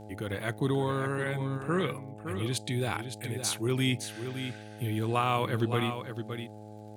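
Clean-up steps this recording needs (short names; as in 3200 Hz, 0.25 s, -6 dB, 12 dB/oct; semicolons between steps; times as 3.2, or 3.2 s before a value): de-click; de-hum 106.3 Hz, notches 8; inverse comb 0.564 s -8.5 dB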